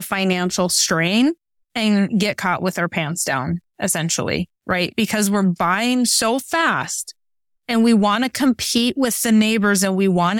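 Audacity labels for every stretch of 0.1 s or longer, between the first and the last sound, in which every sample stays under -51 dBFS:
1.340000	1.750000	silence
3.590000	3.790000	silence
4.450000	4.670000	silence
7.120000	7.690000	silence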